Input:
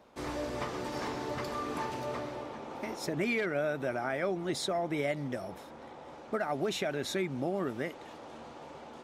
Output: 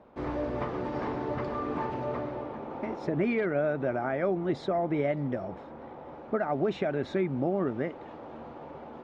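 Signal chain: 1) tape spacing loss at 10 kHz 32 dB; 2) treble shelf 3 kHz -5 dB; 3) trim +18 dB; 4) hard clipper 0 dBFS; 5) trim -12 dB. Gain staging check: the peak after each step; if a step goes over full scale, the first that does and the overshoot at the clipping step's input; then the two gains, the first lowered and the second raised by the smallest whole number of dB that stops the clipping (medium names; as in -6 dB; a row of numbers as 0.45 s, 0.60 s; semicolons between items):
-21.5 dBFS, -21.5 dBFS, -3.5 dBFS, -3.5 dBFS, -15.5 dBFS; nothing clips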